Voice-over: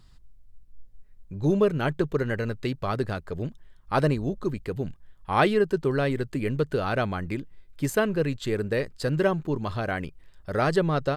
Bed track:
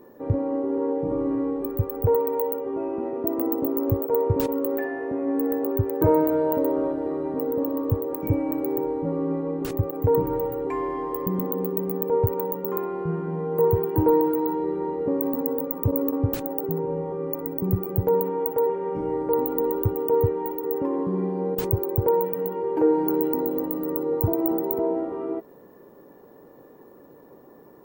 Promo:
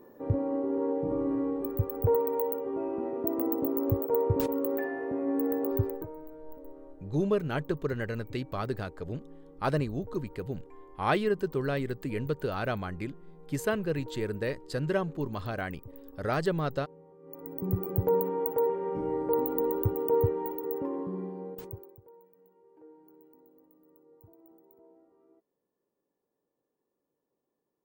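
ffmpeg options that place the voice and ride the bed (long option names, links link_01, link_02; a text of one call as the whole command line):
ffmpeg -i stem1.wav -i stem2.wav -filter_complex "[0:a]adelay=5700,volume=-5.5dB[link_01];[1:a]volume=16.5dB,afade=type=out:start_time=5.84:duration=0.22:silence=0.0891251,afade=type=in:start_time=17.22:duration=0.63:silence=0.0891251,afade=type=out:start_time=20.33:duration=1.67:silence=0.0316228[link_02];[link_01][link_02]amix=inputs=2:normalize=0" out.wav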